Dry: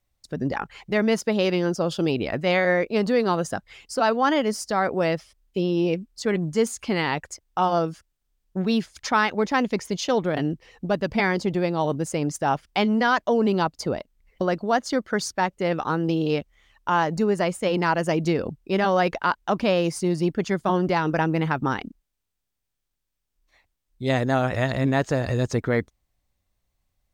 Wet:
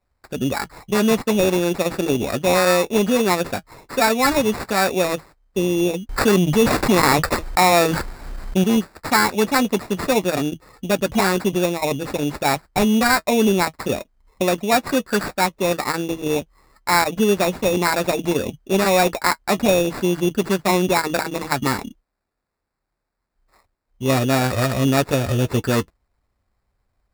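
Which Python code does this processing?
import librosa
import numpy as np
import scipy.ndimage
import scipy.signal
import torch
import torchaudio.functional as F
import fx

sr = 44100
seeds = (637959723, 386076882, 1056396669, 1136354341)

y = fx.notch_comb(x, sr, f0_hz=160.0)
y = fx.sample_hold(y, sr, seeds[0], rate_hz=3100.0, jitter_pct=0)
y = fx.env_flatten(y, sr, amount_pct=70, at=(6.09, 8.64))
y = y * 10.0 ** (5.0 / 20.0)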